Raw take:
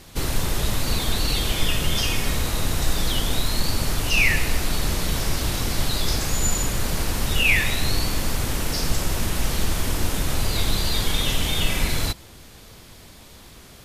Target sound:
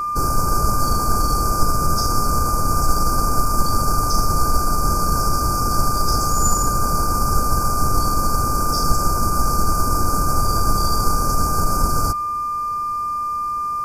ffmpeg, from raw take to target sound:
ffmpeg -i in.wav -af "afftfilt=real='re*(1-between(b*sr/4096,1600,4500))':imag='im*(1-between(b*sr/4096,1600,4500))':win_size=4096:overlap=0.75,aeval=exprs='val(0)+0.0631*sin(2*PI*1200*n/s)':channel_layout=same,aeval=exprs='0.447*(cos(1*acos(clip(val(0)/0.447,-1,1)))-cos(1*PI/2))+0.0562*(cos(2*acos(clip(val(0)/0.447,-1,1)))-cos(2*PI/2))':channel_layout=same,volume=3.5dB" out.wav

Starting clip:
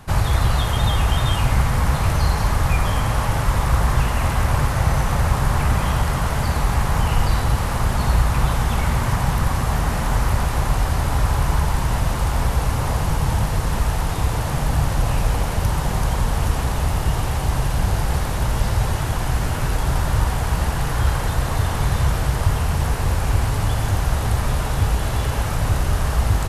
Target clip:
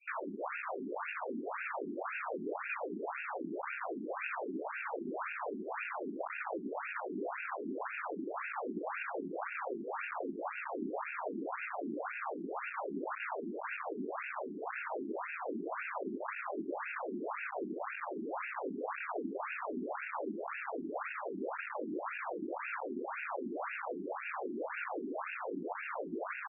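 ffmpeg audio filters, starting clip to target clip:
ffmpeg -i in.wav -filter_complex "[0:a]equalizer=frequency=160:width_type=o:width=0.33:gain=8,equalizer=frequency=250:width_type=o:width=0.33:gain=7,equalizer=frequency=10000:width_type=o:width=0.33:gain=-8,afftfilt=real='re*(1-between(b*sr/4096,180,2300))':imag='im*(1-between(b*sr/4096,180,2300))':win_size=4096:overlap=0.75,highshelf=frequency=8600:gain=6,alimiter=limit=-15dB:level=0:latency=1:release=356,acrossover=split=1500[link_01][link_02];[link_01]acrusher=bits=4:mix=0:aa=0.000001[link_03];[link_02]aecho=1:1:40|48|70|72|399:0.335|0.106|0.133|0.398|0.188[link_04];[link_03][link_04]amix=inputs=2:normalize=0,afftfilt=real='re*between(b*sr/1024,270*pow(2000/270,0.5+0.5*sin(2*PI*1.9*pts/sr))/1.41,270*pow(2000/270,0.5+0.5*sin(2*PI*1.9*pts/sr))*1.41)':imag='im*between(b*sr/1024,270*pow(2000/270,0.5+0.5*sin(2*PI*1.9*pts/sr))/1.41,270*pow(2000/270,0.5+0.5*sin(2*PI*1.9*pts/sr))*1.41)':win_size=1024:overlap=0.75,volume=2dB" out.wav

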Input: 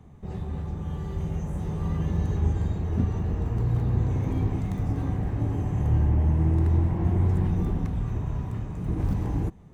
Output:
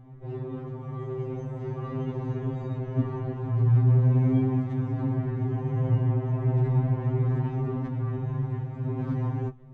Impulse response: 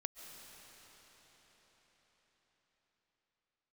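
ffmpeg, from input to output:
-af "adynamicsmooth=sensitivity=1.5:basefreq=2400,afftfilt=real='re*2.45*eq(mod(b,6),0)':imag='im*2.45*eq(mod(b,6),0)':win_size=2048:overlap=0.75,volume=4.5dB"

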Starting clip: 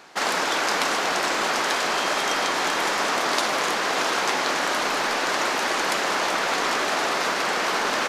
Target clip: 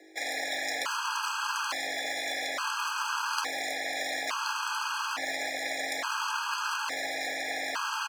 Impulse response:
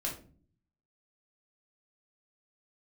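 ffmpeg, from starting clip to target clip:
-filter_complex "[0:a]asplit=2[link_01][link_02];[link_02]acrusher=bits=4:dc=4:mix=0:aa=0.000001,volume=-11dB[link_03];[link_01][link_03]amix=inputs=2:normalize=0,aeval=exprs='val(0)+0.00447*(sin(2*PI*50*n/s)+sin(2*PI*2*50*n/s)/2+sin(2*PI*3*50*n/s)/3+sin(2*PI*4*50*n/s)/4+sin(2*PI*5*50*n/s)/5)':channel_layout=same,afreqshift=270,asplit=5[link_04][link_05][link_06][link_07][link_08];[link_05]adelay=140,afreqshift=-92,volume=-19dB[link_09];[link_06]adelay=280,afreqshift=-184,volume=-25dB[link_10];[link_07]adelay=420,afreqshift=-276,volume=-31dB[link_11];[link_08]adelay=560,afreqshift=-368,volume=-37.1dB[link_12];[link_04][link_09][link_10][link_11][link_12]amix=inputs=5:normalize=0,afftfilt=real='re*gt(sin(2*PI*0.58*pts/sr)*(1-2*mod(floor(b*sr/1024/830),2)),0)':imag='im*gt(sin(2*PI*0.58*pts/sr)*(1-2*mod(floor(b*sr/1024/830),2)),0)':win_size=1024:overlap=0.75,volume=-7.5dB"

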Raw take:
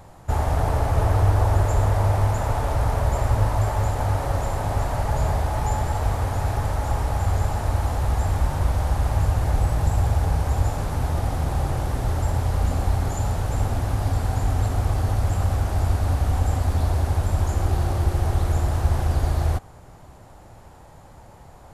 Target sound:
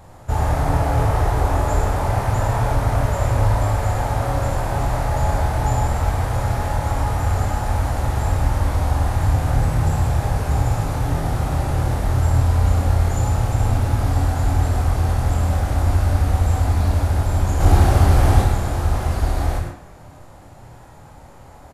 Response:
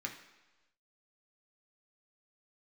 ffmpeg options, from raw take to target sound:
-filter_complex "[0:a]asettb=1/sr,asplit=3[link_01][link_02][link_03];[link_01]atrim=end=17.604[link_04];[link_02]atrim=start=17.6:end=18.42,asetpts=PTS-STARTPTS,afade=type=in:duration=0.004:curve=qsin,afade=type=out:start_time=0.816:duration=0.004:curve=qsin,acontrast=73[link_05];[link_03]atrim=start=18.416[link_06];[link_04][link_05]acrossfade=duration=0.004:curve1=hsin:curve2=qsin[link_07];[link_07][link_06]acrossfade=duration=0.004:curve1=qsin:curve2=hsin,aecho=1:1:25|57:0.631|0.501,asplit=2[link_08][link_09];[1:a]atrim=start_sample=2205,adelay=101[link_10];[link_09][link_10]afir=irnorm=-1:irlink=0,volume=-3.5dB[link_11];[link_08][link_11]amix=inputs=2:normalize=0"

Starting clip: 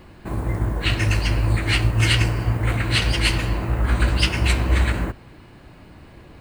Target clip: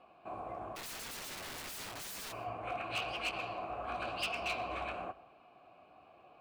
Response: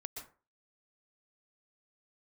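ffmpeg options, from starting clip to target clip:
-filter_complex "[0:a]asettb=1/sr,asplit=3[link_01][link_02][link_03];[link_01]atrim=end=3.314[link_04];[link_02]atrim=start=3.31:end=4.73,asetpts=PTS-STARTPTS,afade=type=in:duration=0.004:curve=qsin,afade=type=out:start_time=1.416:duration=0.004:curve=qsin,adynamicequalizer=threshold=0.01:dfrequency=4400:dqfactor=1.4:tfrequency=4400:tqfactor=1.4:attack=5:release=100:ratio=0.375:range=4:mode=boostabove:tftype=bell[link_05];[link_03]atrim=start=4.726[link_06];[link_04][link_05]acrossfade=duration=0.004:curve1=hsin:curve2=qsin[link_07];[link_07][link_06]acrossfade=duration=0.004:curve1=qsin:curve2=hsin,asplit=3[link_08][link_09][link_10];[link_08]bandpass=frequency=730:width_type=q:width=8,volume=0dB[link_11];[link_09]bandpass=frequency=1090:width_type=q:width=8,volume=-6dB[link_12];[link_10]bandpass=frequency=2440:width_type=q:width=8,volume=-9dB[link_13];[link_11][link_12][link_13]amix=inputs=3:normalize=0,asplit=3[link_14][link_15][link_16];[link_14]afade=type=out:start_time=0.75:duration=0.02[link_17];[link_15]aeval=exprs='(mod(100*val(0)+1,2)-1)/100':channel_layout=same,afade=type=in:start_time=0.75:duration=0.02,afade=type=out:start_time=2.31:duration=0.02[link_18];[link_16]afade=type=in:start_time=2.31:duration=0.02[link_19];[link_17][link_18][link_19]amix=inputs=3:normalize=0,flanger=delay=4.2:depth=9.8:regen=-44:speed=0.92:shape=sinusoidal,asoftclip=type=hard:threshold=-35dB,asplit=2[link_20][link_21];[1:a]atrim=start_sample=2205[link_22];[link_21][link_22]afir=irnorm=-1:irlink=0,volume=-12.5dB[link_23];[link_20][link_23]amix=inputs=2:normalize=0,volume=3dB"

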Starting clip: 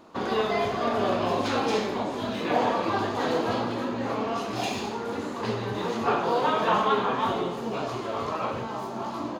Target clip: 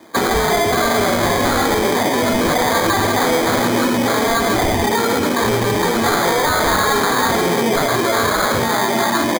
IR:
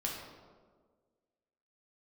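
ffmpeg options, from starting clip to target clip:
-filter_complex "[0:a]afftdn=noise_reduction=17:noise_floor=-36,highshelf=frequency=2300:gain=12,acrossover=split=120|1400[link_01][link_02][link_03];[link_03]aeval=exprs='sgn(val(0))*max(abs(val(0))-0.001,0)':channel_layout=same[link_04];[link_01][link_02][link_04]amix=inputs=3:normalize=0,acrossover=split=120|3000[link_05][link_06][link_07];[link_06]acompressor=threshold=-38dB:ratio=2[link_08];[link_05][link_08][link_07]amix=inputs=3:normalize=0,aresample=8000,asoftclip=type=tanh:threshold=-27dB,aresample=44100,highpass=frequency=51:poles=1,equalizer=frequency=100:width=0.63:gain=-3.5,asplit=2[link_09][link_10];[link_10]adelay=12,volume=-11dB[link_11];[link_09][link_11]amix=inputs=2:normalize=0,acrusher=samples=16:mix=1:aa=0.000001,alimiter=level_in=33dB:limit=-1dB:release=50:level=0:latency=1,volume=-9dB"

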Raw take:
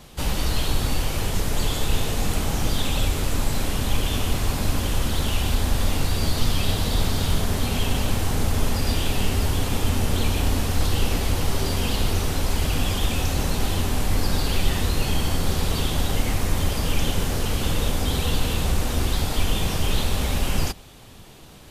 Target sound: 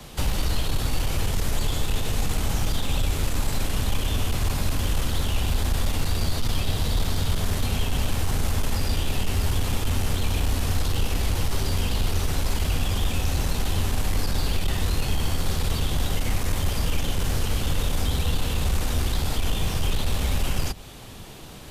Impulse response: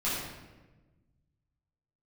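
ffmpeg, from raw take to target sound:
-filter_complex "[0:a]aeval=exprs='(tanh(5.01*val(0)+0.2)-tanh(0.2))/5.01':channel_layout=same,acrossover=split=150|320|1000[link_01][link_02][link_03][link_04];[link_01]acompressor=threshold=-24dB:ratio=4[link_05];[link_02]acompressor=threshold=-45dB:ratio=4[link_06];[link_03]acompressor=threshold=-43dB:ratio=4[link_07];[link_04]acompressor=threshold=-37dB:ratio=4[link_08];[link_05][link_06][link_07][link_08]amix=inputs=4:normalize=0,volume=4.5dB"

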